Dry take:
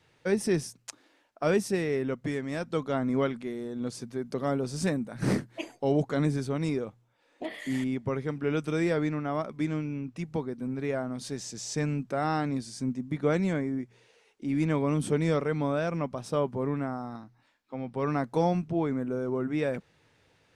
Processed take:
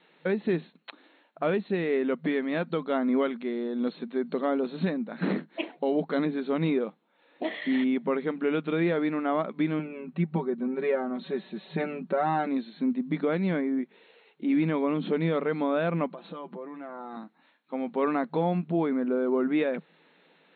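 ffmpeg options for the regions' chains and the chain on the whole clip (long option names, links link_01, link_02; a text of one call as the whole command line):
ffmpeg -i in.wav -filter_complex "[0:a]asettb=1/sr,asplit=3[link_01][link_02][link_03];[link_01]atrim=end=9.794[link_04];[link_02]atrim=start=9.79:end=12.47,asetpts=PTS-STARTPTS,afade=type=in:duration=0.004:curve=qsin,afade=type=out:start_time=2.676:duration=0.004:curve=qsin,highshelf=frequency=3300:gain=-11.5,aecho=1:1:5.3:0.82,atrim=end_sample=118188[link_05];[link_03]atrim=start=12.466[link_06];[link_04][link_05]acrossfade=duration=0.004:curve1=hsin:curve2=qsin[link_07];[link_07][link_06]acrossfade=duration=0.004:curve1=qsin:curve2=hsin,asettb=1/sr,asplit=3[link_08][link_09][link_10];[link_08]atrim=end=16.094[link_11];[link_09]atrim=start=16.09:end=17.17,asetpts=PTS-STARTPTS,afade=type=in:duration=0.004:curve=qsin,afade=type=out:start_time=1.076:duration=0.004:curve=qsin,aecho=1:1:5.9:0.65,atrim=end_sample=47628,acompressor=threshold=-39dB:ratio=10:attack=3.2:release=140:knee=1:detection=peak[link_12];[link_10]atrim=start=17.166[link_13];[link_11][link_12]acrossfade=duration=0.004:curve1=hsin:curve2=qsin[link_14];[link_14][link_13]acrossfade=duration=0.004:curve1=qsin:curve2=hsin,afftfilt=real='re*between(b*sr/4096,160,4300)':imag='im*between(b*sr/4096,160,4300)':win_size=4096:overlap=0.75,alimiter=limit=-22dB:level=0:latency=1:release=324,volume=5dB" out.wav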